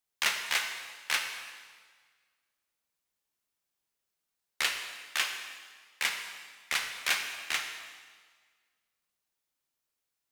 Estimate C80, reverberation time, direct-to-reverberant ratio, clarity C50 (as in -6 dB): 7.0 dB, 1.6 s, 4.0 dB, 6.0 dB